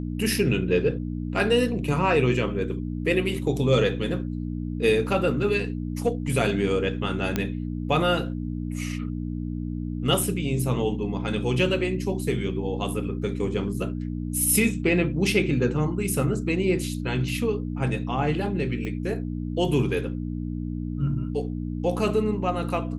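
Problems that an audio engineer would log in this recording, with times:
hum 60 Hz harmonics 5 -30 dBFS
7.36 s: pop -10 dBFS
18.85 s: pop -21 dBFS

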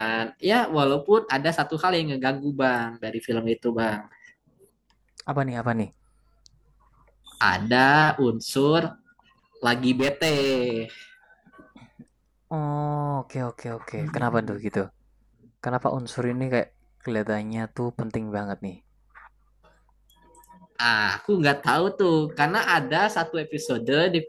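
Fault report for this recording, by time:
9.99–10.63 s: clipped -18.5 dBFS

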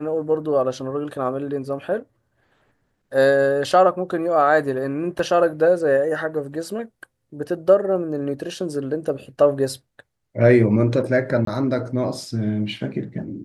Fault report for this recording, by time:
5.19 s: dropout 2.5 ms
11.45–11.47 s: dropout 23 ms

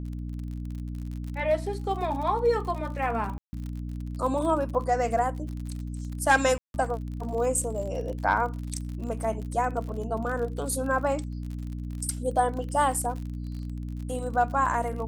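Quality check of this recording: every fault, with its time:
crackle 54 per s -35 dBFS
hum 60 Hz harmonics 5 -34 dBFS
3.38–3.53 s: dropout 150 ms
6.58–6.74 s: dropout 161 ms

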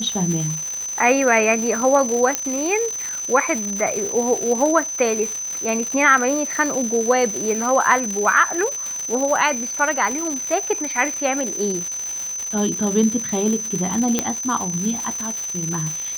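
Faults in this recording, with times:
crackle 320 per s -24 dBFS
whine 6.1 kHz -25 dBFS
2.35 s: pop -4 dBFS
14.19 s: pop -3 dBFS

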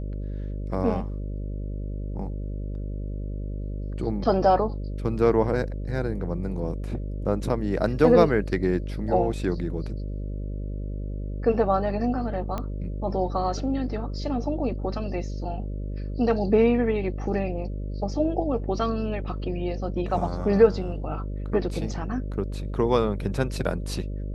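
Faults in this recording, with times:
buzz 50 Hz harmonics 12 -31 dBFS
12.58 s: pop -17 dBFS

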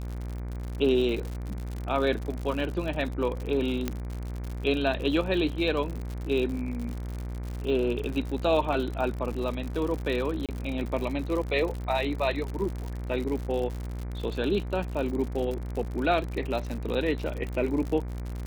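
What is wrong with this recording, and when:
buzz 60 Hz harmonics 40 -34 dBFS
crackle 81 per s -32 dBFS
3.88 s: pop -14 dBFS
10.46–10.49 s: dropout 27 ms

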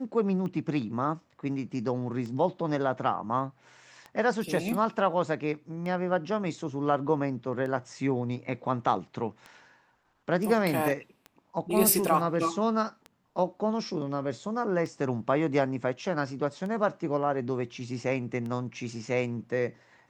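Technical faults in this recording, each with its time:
tick 33 1/3 rpm -27 dBFS

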